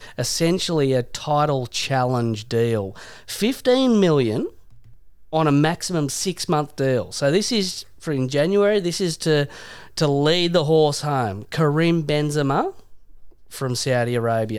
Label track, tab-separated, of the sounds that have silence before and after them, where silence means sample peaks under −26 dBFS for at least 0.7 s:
5.330000	12.700000	sound